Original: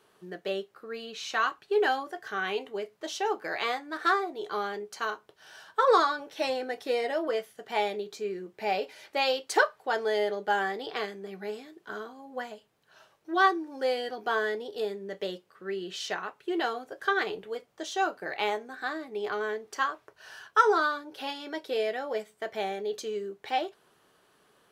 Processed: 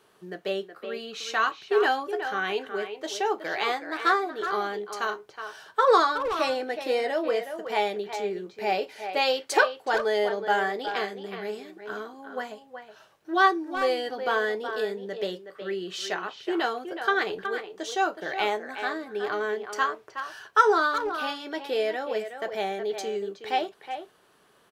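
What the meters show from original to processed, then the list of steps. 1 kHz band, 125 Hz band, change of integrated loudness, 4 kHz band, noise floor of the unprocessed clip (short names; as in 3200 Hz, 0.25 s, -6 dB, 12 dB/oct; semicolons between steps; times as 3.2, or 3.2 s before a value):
+3.0 dB, n/a, +3.0 dB, +3.0 dB, -67 dBFS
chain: speakerphone echo 0.37 s, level -8 dB; gain +2.5 dB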